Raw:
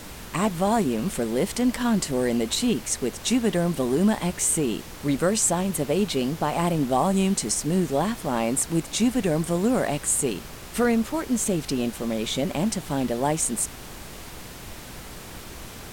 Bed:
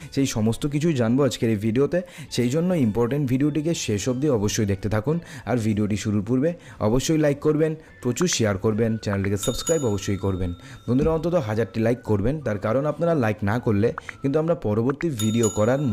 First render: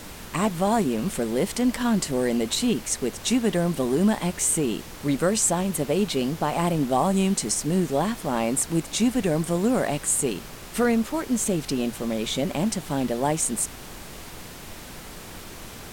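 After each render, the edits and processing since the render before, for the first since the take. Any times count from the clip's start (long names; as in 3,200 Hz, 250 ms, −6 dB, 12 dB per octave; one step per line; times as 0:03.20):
hum removal 60 Hz, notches 2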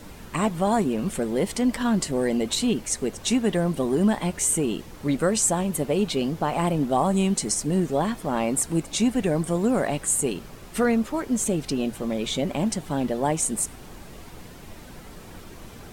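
broadband denoise 8 dB, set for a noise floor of −41 dBFS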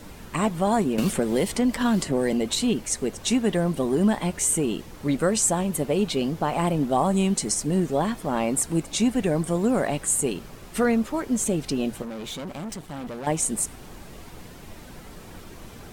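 0:00.98–0:02.33: multiband upward and downward compressor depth 100%
0:12.02–0:13.27: tube saturation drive 31 dB, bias 0.75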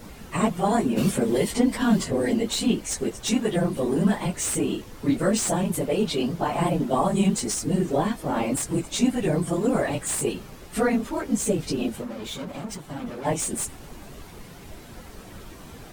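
random phases in long frames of 50 ms
slew-rate limiting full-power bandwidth 430 Hz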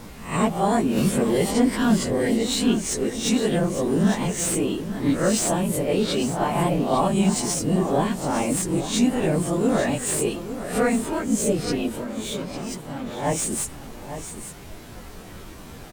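peak hold with a rise ahead of every peak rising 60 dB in 0.41 s
single-tap delay 854 ms −11 dB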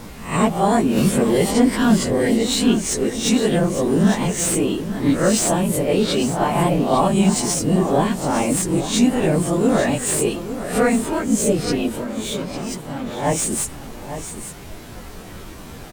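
level +4 dB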